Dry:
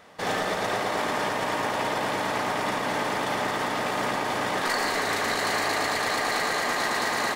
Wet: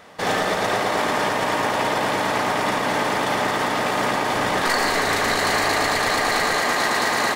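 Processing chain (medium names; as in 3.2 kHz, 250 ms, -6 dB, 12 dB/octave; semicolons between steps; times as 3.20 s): 4.36–6.59 s: bass shelf 64 Hz +11.5 dB; trim +5.5 dB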